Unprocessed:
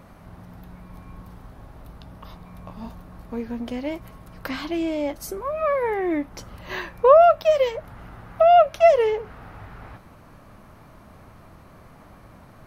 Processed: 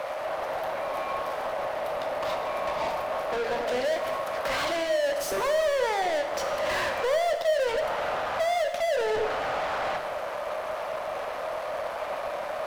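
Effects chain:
downward compressor 6 to 1, threshold −28 dBFS, peak gain reduction 18 dB
dead-zone distortion −52 dBFS
high-pass with resonance 590 Hz, resonance Q 4.9
mid-hump overdrive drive 36 dB, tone 4,000 Hz, clips at −13.5 dBFS
reverb whose tail is shaped and stops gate 470 ms falling, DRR 6 dB
level −8 dB

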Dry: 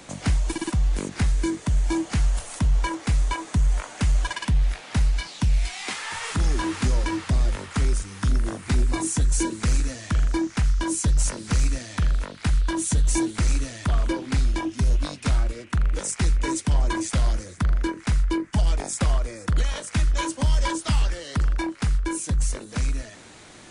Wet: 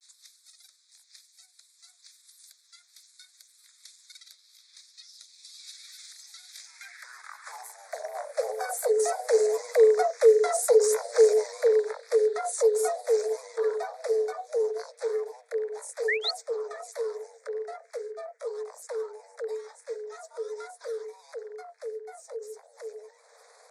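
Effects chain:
source passing by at 0:10.57, 13 m/s, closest 19 metres
upward compression, threshold −43 dBFS
granular cloud, spray 13 ms, pitch spread up and down by 3 semitones
high-pass filter sweep 3,200 Hz → 66 Hz, 0:06.49–0:08.91
frequency shifter +380 Hz
sound drawn into the spectrogram rise, 0:16.08–0:16.31, 1,700–4,600 Hz −24 dBFS
Butterworth band-reject 2,900 Hz, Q 1.6

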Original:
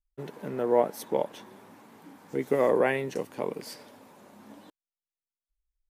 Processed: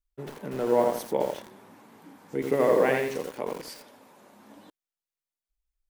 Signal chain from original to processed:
0:03.08–0:04.56: low-shelf EQ 230 Hz −7 dB
feedback echo at a low word length 84 ms, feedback 35%, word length 7 bits, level −3 dB

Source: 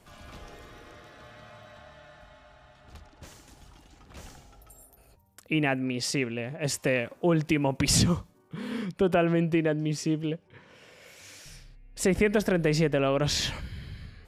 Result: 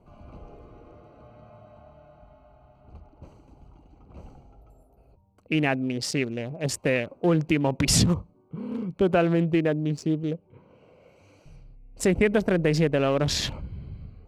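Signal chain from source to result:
adaptive Wiener filter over 25 samples
level +2.5 dB

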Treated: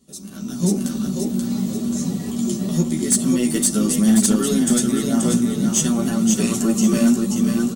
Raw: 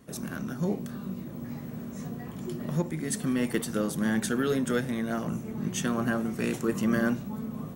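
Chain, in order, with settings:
graphic EQ with 10 bands 125 Hz −7 dB, 250 Hz +5 dB, 500 Hz −5 dB, 1,000 Hz −5 dB, 2,000 Hz −8 dB, 4,000 Hz +7 dB, 8,000 Hz +10 dB
in parallel at −2 dB: downward compressor, threshold −32 dBFS, peak gain reduction 13 dB
on the sum: notch filter 1,600 Hz, Q 8.1
comb filter 5.2 ms, depth 34%
on a send: repeating echo 532 ms, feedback 42%, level −4 dB
on the sum: multi-voice chorus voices 2, 0.47 Hz, delay 13 ms, depth 3.6 ms
hard clipping −17.5 dBFS, distortion −24 dB
automatic gain control gain up to 16.5 dB
dynamic equaliser 3,900 Hz, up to −5 dB, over −34 dBFS, Q 2.4
level −6.5 dB

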